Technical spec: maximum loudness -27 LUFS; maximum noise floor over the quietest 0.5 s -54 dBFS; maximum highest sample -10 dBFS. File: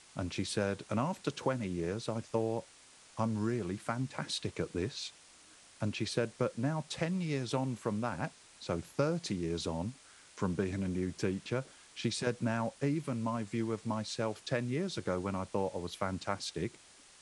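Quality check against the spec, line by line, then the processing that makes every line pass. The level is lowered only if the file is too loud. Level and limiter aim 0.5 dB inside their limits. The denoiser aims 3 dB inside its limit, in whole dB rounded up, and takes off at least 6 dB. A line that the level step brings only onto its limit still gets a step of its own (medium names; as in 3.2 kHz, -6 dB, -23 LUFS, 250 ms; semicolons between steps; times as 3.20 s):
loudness -36.0 LUFS: pass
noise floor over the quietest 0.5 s -59 dBFS: pass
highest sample -17.0 dBFS: pass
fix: none needed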